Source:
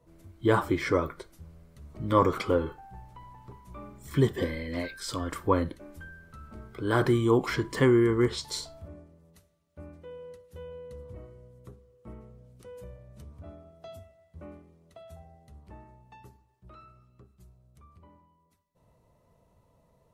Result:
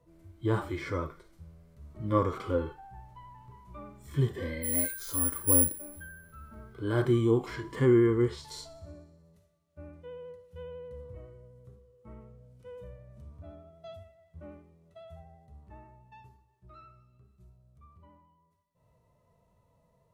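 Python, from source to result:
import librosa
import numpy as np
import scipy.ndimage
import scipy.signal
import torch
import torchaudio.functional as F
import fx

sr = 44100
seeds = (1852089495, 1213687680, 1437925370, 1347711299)

p1 = fx.vibrato(x, sr, rate_hz=12.0, depth_cents=22.0)
p2 = fx.resample_bad(p1, sr, factor=4, down='filtered', up='zero_stuff', at=(4.63, 5.86))
p3 = fx.hpss(p2, sr, part='percussive', gain_db=-17)
y = p3 + fx.echo_wet_highpass(p3, sr, ms=61, feedback_pct=74, hz=4000.0, wet_db=-20.0, dry=0)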